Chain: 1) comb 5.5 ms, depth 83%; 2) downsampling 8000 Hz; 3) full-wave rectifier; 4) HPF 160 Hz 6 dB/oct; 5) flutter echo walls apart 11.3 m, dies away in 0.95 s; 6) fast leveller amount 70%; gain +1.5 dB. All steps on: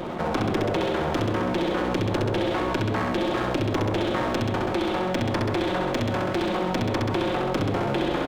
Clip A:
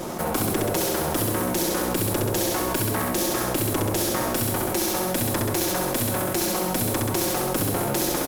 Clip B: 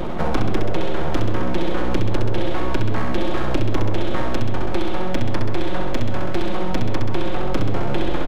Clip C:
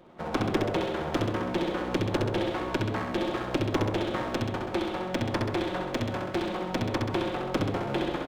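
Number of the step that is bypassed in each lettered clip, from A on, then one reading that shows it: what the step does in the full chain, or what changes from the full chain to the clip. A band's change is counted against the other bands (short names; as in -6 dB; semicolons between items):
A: 2, 8 kHz band +20.5 dB; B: 4, 125 Hz band +4.5 dB; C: 6, crest factor change +3.0 dB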